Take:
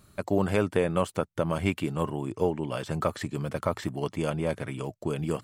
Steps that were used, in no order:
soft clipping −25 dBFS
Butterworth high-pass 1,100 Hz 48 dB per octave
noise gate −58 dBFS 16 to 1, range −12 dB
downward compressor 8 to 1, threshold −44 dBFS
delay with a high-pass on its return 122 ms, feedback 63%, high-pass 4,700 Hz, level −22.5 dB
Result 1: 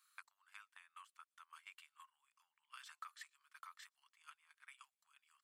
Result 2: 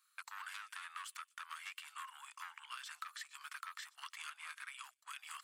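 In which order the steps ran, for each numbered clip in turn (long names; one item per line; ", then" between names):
delay with a high-pass on its return, then downward compressor, then soft clipping, then Butterworth high-pass, then noise gate
delay with a high-pass on its return, then soft clipping, then Butterworth high-pass, then downward compressor, then noise gate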